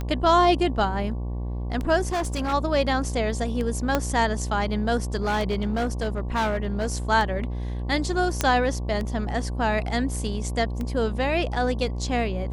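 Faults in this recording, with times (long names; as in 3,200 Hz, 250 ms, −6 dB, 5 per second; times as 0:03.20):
mains buzz 60 Hz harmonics 19 −29 dBFS
scratch tick 33 1/3 rpm −18 dBFS
0:02.12–0:02.54: clipping −22.5 dBFS
0:03.95: click −7 dBFS
0:05.15–0:06.94: clipping −20 dBFS
0:08.41: click −6 dBFS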